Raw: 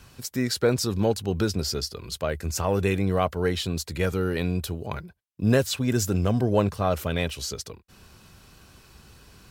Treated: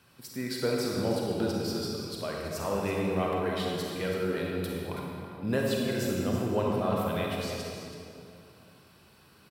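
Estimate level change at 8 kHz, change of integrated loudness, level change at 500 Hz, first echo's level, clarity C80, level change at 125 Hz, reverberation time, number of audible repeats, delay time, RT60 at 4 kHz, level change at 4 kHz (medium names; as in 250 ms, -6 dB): -9.5 dB, -5.0 dB, -3.5 dB, -10.5 dB, -0.5 dB, -8.5 dB, 2.5 s, 1, 327 ms, 1.8 s, -5.5 dB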